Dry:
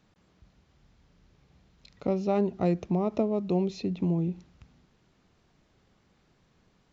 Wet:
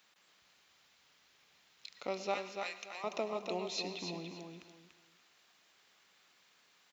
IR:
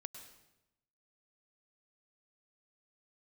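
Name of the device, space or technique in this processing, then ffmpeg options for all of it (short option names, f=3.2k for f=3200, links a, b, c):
filtered reverb send: -filter_complex "[0:a]asplit=2[a][b];[b]highpass=f=420:p=1,lowpass=3.8k[c];[1:a]atrim=start_sample=2205[d];[c][d]afir=irnorm=-1:irlink=0,volume=6.5dB[e];[a][e]amix=inputs=2:normalize=0,asettb=1/sr,asplit=3[f][g][h];[f]atrim=end=2.344[i];[g]atrim=start=2.34:end=3.04,asetpts=PTS-STARTPTS,afade=t=in:d=0.004:c=qsin,afade=t=out:st=0.696:d=0.004:c=qsin,highpass=1.4k[j];[h]atrim=start=3.036[k];[i][j]acrossfade=d=0.004:c1=hsin:c2=qsin[l];[l][k]acrossfade=d=0.004:c1=qsin:c2=hsin,aderivative,aecho=1:1:289|578|867:0.501|0.115|0.0265,volume=8.5dB"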